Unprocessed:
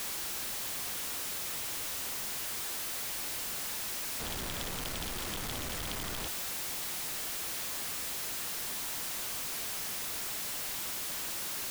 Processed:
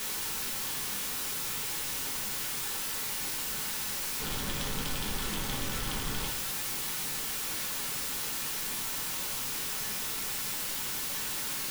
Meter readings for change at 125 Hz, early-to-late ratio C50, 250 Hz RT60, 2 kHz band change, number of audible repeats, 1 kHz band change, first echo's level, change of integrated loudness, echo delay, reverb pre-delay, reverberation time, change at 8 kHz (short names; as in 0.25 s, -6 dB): +5.0 dB, 9.5 dB, 0.70 s, +3.0 dB, none, +3.0 dB, none, +2.5 dB, none, 5 ms, 0.45 s, +2.5 dB